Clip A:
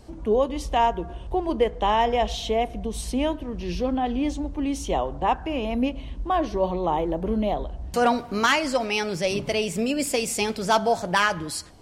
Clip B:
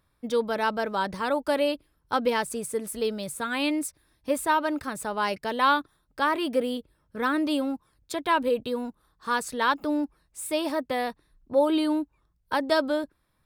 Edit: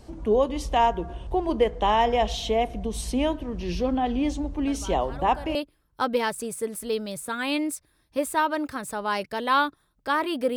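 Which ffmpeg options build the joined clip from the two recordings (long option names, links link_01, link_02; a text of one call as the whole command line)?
ffmpeg -i cue0.wav -i cue1.wav -filter_complex "[1:a]asplit=2[link_01][link_02];[0:a]apad=whole_dur=10.56,atrim=end=10.56,atrim=end=5.552[link_03];[link_02]atrim=start=1.668:end=6.68[link_04];[link_01]atrim=start=0.79:end=1.67,asetpts=PTS-STARTPTS,volume=-15dB,afade=type=in:duration=0.004:curve=hsin,afade=type=out:start_time=0.876:duration=0.004:curve=hsin,adelay=4670[link_05];[link_03][link_04]acrossfade=duration=0.004:curve1=hsin:curve2=hsin[link_06];[link_06][link_05]amix=inputs=2:normalize=0" out.wav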